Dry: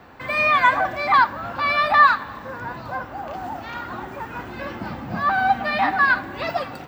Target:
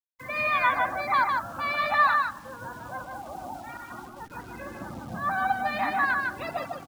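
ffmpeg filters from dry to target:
-filter_complex "[0:a]asettb=1/sr,asplit=3[s0][s1][s2];[s0]atrim=end=3.774[s3];[s1]atrim=start=3.77:end=4.31,asetpts=PTS-STARTPTS,afade=t=in:d=0.004:c=qsin,afade=t=out:st=0.536:d=0.004:c=qsin,agate=range=0.0224:threshold=0.0355:ratio=3:detection=peak[s4];[s2]atrim=start=4.306[s5];[s3][s4]acrossfade=d=0.004:c1=hsin:c2=qsin[s6];[s6][s5]acrossfade=d=0.004:c1=qsin:c2=hsin,afftfilt=real='re*gte(hypot(re,im),0.0355)':imag='im*gte(hypot(re,im),0.0355)':win_size=1024:overlap=0.75,acrusher=bits=8:dc=4:mix=0:aa=0.000001,aecho=1:1:152:0.631,volume=0.398"

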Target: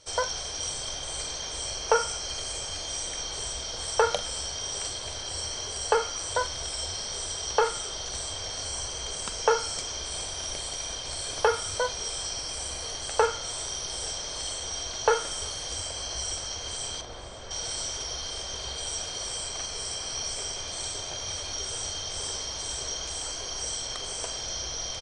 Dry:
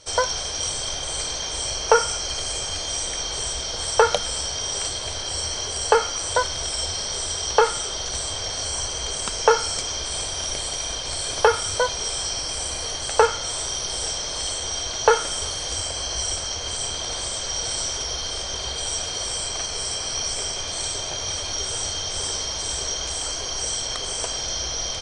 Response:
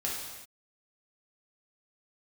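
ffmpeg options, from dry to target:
-filter_complex "[0:a]asettb=1/sr,asplit=3[s0][s1][s2];[s0]atrim=end=17.014[s3];[s1]atrim=start=17.01:end=17.51,asetpts=PTS-STARTPTS,afade=t=in:d=0.004:c=qsin,afade=t=out:st=0.496:d=0.004:c=qsin,lowpass=f=1200:p=1[s4];[s2]atrim=start=17.506[s5];[s3][s4]acrossfade=d=0.004:c1=hsin:c2=qsin[s6];[s6][s5]acrossfade=d=0.004:c1=qsin:c2=hsin,asplit=2[s7][s8];[s8]adelay=44,volume=0.224[s9];[s7][s9]amix=inputs=2:normalize=0,volume=0.473"

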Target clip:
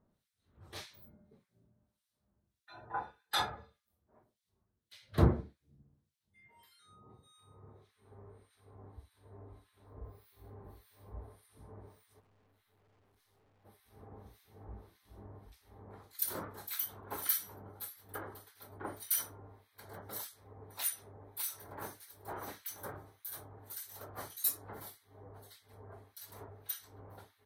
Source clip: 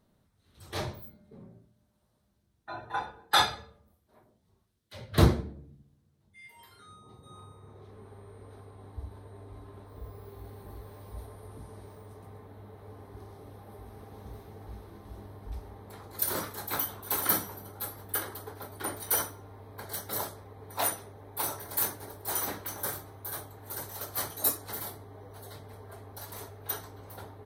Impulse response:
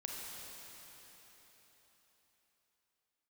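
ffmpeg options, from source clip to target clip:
-filter_complex "[0:a]acrossover=split=1800[s0][s1];[s0]aeval=exprs='val(0)*(1-1/2+1/2*cos(2*PI*1.7*n/s))':c=same[s2];[s1]aeval=exprs='val(0)*(1-1/2-1/2*cos(2*PI*1.7*n/s))':c=same[s3];[s2][s3]amix=inputs=2:normalize=0,asplit=3[s4][s5][s6];[s4]afade=t=out:st=12.19:d=0.02[s7];[s5]aeval=exprs='(tanh(2000*val(0)+0.4)-tanh(0.4))/2000':c=same,afade=t=in:st=12.19:d=0.02,afade=t=out:st=13.64:d=0.02[s8];[s6]afade=t=in:st=13.64:d=0.02[s9];[s7][s8][s9]amix=inputs=3:normalize=0,volume=0.631"

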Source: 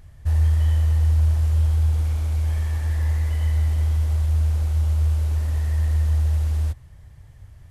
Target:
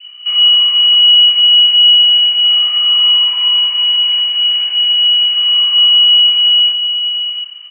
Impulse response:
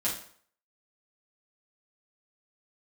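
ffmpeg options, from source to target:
-filter_complex "[0:a]aemphasis=mode=reproduction:type=75fm,asplit=2[s0][s1];[s1]adelay=699.7,volume=0.355,highshelf=f=4000:g=-15.7[s2];[s0][s2]amix=inputs=2:normalize=0,asplit=2[s3][s4];[s4]acompressor=threshold=0.0355:ratio=6,volume=0.944[s5];[s3][s5]amix=inputs=2:normalize=0,flanger=delay=2.5:depth=5.7:regen=-78:speed=1:shape=sinusoidal,asplit=2[s6][s7];[1:a]atrim=start_sample=2205,lowpass=2200[s8];[s7][s8]afir=irnorm=-1:irlink=0,volume=0.237[s9];[s6][s9]amix=inputs=2:normalize=0,adynamicequalizer=threshold=0.00158:dfrequency=2000:dqfactor=1.5:tfrequency=2000:tqfactor=1.5:attack=5:release=100:ratio=0.375:range=3:mode=boostabove:tftype=bell,lowpass=f=2600:t=q:w=0.5098,lowpass=f=2600:t=q:w=0.6013,lowpass=f=2600:t=q:w=0.9,lowpass=f=2600:t=q:w=2.563,afreqshift=-3000,volume=2.11"

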